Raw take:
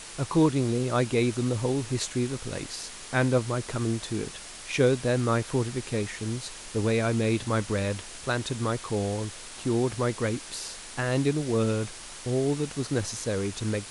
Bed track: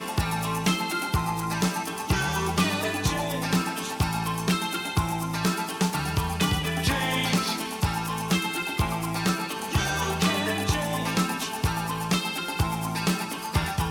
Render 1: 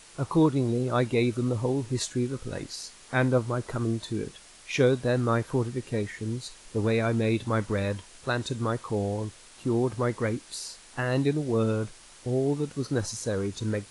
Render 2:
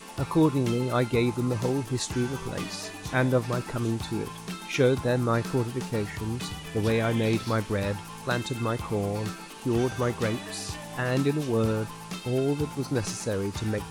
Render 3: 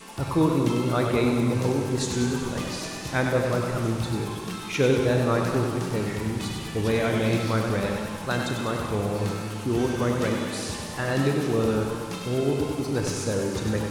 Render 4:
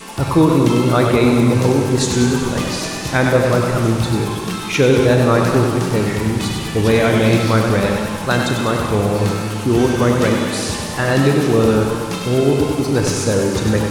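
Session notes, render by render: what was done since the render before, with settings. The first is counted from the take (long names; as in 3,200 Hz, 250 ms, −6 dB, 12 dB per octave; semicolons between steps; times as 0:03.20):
noise reduction from a noise print 9 dB
mix in bed track −12 dB
four-comb reverb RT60 2.2 s, combs from 29 ms, DRR 5 dB; feedback echo with a swinging delay time 97 ms, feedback 63%, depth 86 cents, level −6.5 dB
level +10 dB; brickwall limiter −3 dBFS, peak gain reduction 3 dB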